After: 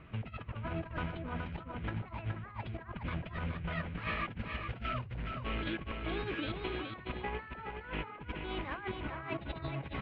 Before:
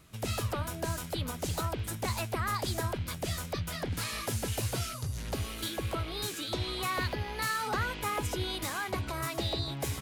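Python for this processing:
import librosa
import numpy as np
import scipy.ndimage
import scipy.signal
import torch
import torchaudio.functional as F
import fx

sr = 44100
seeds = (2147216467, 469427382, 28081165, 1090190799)

y = scipy.signal.sosfilt(scipy.signal.butter(6, 2800.0, 'lowpass', fs=sr, output='sos'), x)
y = fx.over_compress(y, sr, threshold_db=-40.0, ratio=-0.5)
y = y + 10.0 ** (-5.5 / 20.0) * np.pad(y, (int(420 * sr / 1000.0), 0))[:len(y)]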